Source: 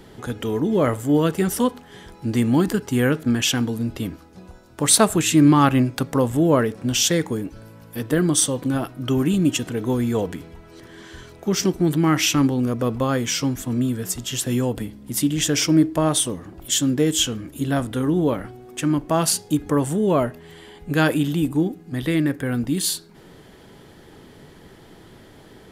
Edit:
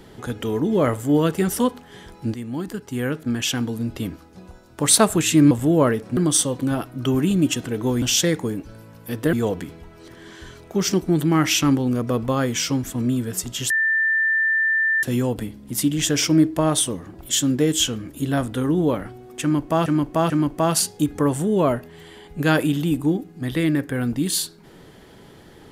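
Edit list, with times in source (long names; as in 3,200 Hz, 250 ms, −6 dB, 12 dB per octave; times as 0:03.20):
0:02.34–0:04.10: fade in, from −14 dB
0:05.51–0:06.23: remove
0:06.89–0:08.20: move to 0:10.05
0:14.42: insert tone 1,780 Hz −16.5 dBFS 1.33 s
0:18.81–0:19.25: repeat, 3 plays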